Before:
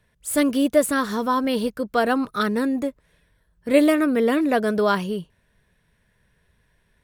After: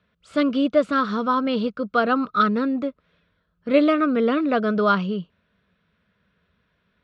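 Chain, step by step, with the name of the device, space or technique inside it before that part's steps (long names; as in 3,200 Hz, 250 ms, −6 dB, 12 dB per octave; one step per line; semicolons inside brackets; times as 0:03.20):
guitar cabinet (loudspeaker in its box 91–4,300 Hz, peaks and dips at 130 Hz −10 dB, 190 Hz +5 dB, 360 Hz −4 dB, 880 Hz −7 dB, 1,300 Hz +10 dB, 1,800 Hz −8 dB)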